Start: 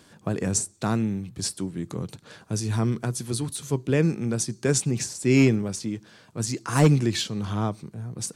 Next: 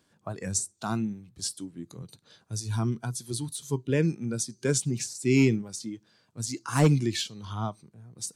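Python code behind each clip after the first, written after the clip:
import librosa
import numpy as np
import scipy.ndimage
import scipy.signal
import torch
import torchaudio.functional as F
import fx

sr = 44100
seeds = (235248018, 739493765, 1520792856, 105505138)

y = fx.noise_reduce_blind(x, sr, reduce_db=11)
y = F.gain(torch.from_numpy(y), -3.0).numpy()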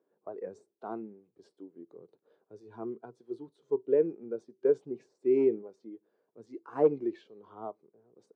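y = fx.ladder_bandpass(x, sr, hz=470.0, resonance_pct=60)
y = fx.dynamic_eq(y, sr, hz=740.0, q=0.83, threshold_db=-48.0, ratio=4.0, max_db=4)
y = F.gain(torch.from_numpy(y), 5.5).numpy()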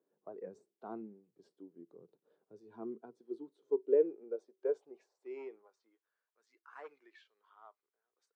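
y = fx.filter_sweep_highpass(x, sr, from_hz=150.0, to_hz=1600.0, start_s=2.47, end_s=6.32, q=1.7)
y = F.gain(torch.from_numpy(y), -7.0).numpy()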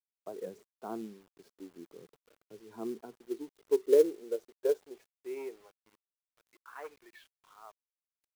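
y = fx.quant_companded(x, sr, bits=6)
y = F.gain(torch.from_numpy(y), 5.0).numpy()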